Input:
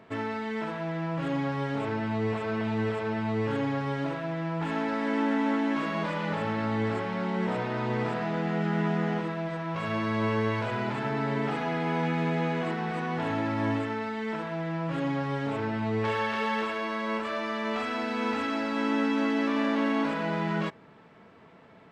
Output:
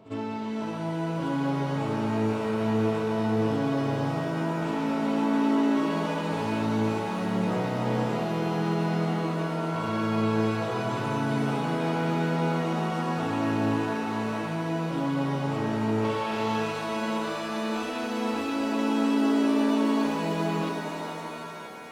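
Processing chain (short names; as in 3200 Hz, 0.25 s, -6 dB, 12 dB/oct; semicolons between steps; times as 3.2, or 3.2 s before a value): bell 1800 Hz -14.5 dB 0.68 oct; on a send: reverse echo 55 ms -15 dB; on the sum: shimmer reverb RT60 3.5 s, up +7 st, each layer -2 dB, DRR 4 dB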